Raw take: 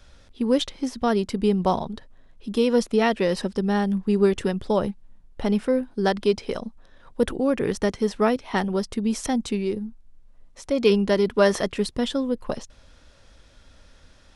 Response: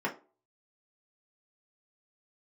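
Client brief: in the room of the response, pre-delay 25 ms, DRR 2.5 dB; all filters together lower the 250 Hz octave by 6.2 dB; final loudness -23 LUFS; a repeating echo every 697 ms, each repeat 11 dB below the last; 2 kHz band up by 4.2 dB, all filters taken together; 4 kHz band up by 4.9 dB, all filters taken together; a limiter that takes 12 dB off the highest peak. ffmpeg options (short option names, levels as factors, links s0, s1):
-filter_complex "[0:a]equalizer=f=250:t=o:g=-8,equalizer=f=2000:t=o:g=4,equalizer=f=4000:t=o:g=5,alimiter=limit=0.119:level=0:latency=1,aecho=1:1:697|1394|2091:0.282|0.0789|0.0221,asplit=2[s0][s1];[1:a]atrim=start_sample=2205,adelay=25[s2];[s1][s2]afir=irnorm=-1:irlink=0,volume=0.316[s3];[s0][s3]amix=inputs=2:normalize=0,volume=1.68"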